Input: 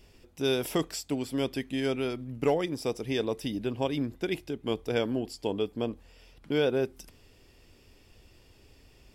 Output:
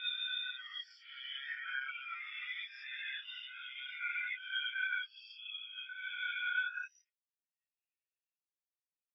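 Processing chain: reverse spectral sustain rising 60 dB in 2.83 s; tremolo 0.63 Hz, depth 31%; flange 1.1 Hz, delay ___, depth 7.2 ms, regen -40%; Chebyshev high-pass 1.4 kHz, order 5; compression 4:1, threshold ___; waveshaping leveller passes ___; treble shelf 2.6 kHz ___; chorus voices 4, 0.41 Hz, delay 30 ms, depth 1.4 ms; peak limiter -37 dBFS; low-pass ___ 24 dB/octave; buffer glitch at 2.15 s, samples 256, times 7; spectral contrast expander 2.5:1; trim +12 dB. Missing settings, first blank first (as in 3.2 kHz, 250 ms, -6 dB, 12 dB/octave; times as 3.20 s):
7.1 ms, -42 dBFS, 2, -10.5 dB, 5.7 kHz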